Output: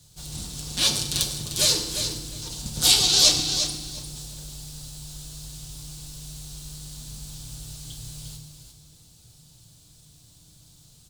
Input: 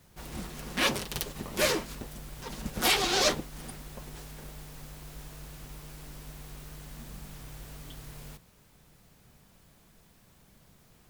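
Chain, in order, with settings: graphic EQ 125/250/500/1000/2000/4000/8000 Hz +8/-6/-4/-5/-11/+11/+11 dB; on a send: feedback delay 352 ms, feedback 18%, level -8 dB; on the sum: FDN reverb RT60 1.1 s, low-frequency decay 1.6×, high-frequency decay 0.8×, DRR 4.5 dB

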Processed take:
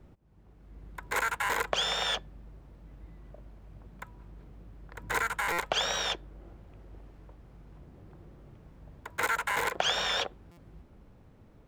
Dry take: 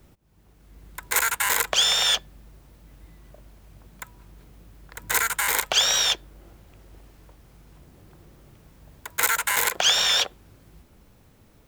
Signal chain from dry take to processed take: low-pass 1.1 kHz 6 dB/octave; buffer glitch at 5.52/10.51 s, samples 256, times 10

